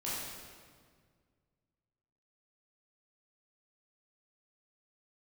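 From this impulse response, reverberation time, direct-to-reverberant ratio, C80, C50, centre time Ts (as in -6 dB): 1.8 s, -9.0 dB, 0.0 dB, -2.5 dB, 0.114 s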